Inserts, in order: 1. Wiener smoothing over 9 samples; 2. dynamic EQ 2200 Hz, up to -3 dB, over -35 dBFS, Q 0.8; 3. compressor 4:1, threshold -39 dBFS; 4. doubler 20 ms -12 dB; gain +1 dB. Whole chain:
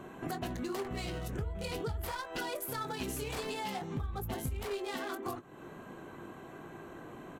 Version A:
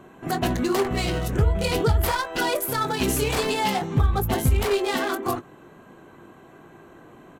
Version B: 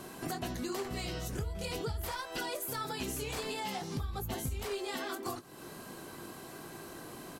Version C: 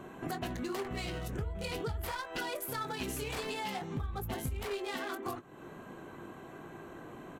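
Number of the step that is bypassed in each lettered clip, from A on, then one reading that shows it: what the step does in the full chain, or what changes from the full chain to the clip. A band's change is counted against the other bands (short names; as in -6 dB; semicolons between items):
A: 3, mean gain reduction 10.0 dB; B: 1, 8 kHz band +4.0 dB; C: 2, 2 kHz band +2.0 dB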